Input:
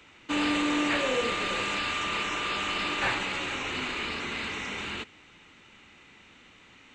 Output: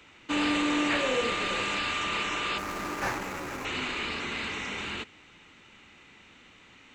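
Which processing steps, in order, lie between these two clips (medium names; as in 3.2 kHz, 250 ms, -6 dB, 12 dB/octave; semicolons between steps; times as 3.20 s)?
2.58–3.65 s: median filter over 15 samples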